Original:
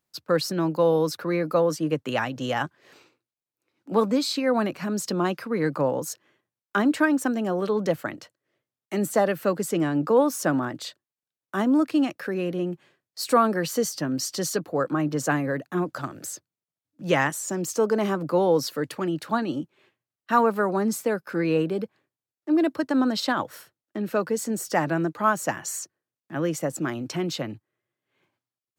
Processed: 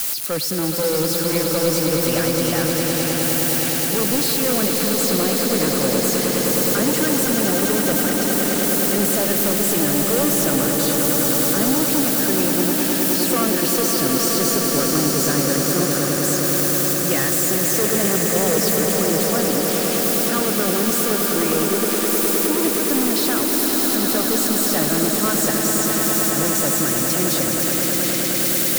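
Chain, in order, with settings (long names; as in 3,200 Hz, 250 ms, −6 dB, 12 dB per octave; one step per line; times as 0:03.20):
spike at every zero crossing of −14.5 dBFS
parametric band 900 Hz −12 dB 0.34 octaves
in parallel at −3 dB: compressor whose output falls as the input rises −27 dBFS
on the sum: brickwall limiter −11.5 dBFS, peak gain reduction 5.5 dB
hard clipping −19.5 dBFS, distortion −10 dB
on a send: echo that builds up and dies away 104 ms, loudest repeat 8, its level −7.5 dB
on the sum: steady tone 9,900 Hz −36 dBFS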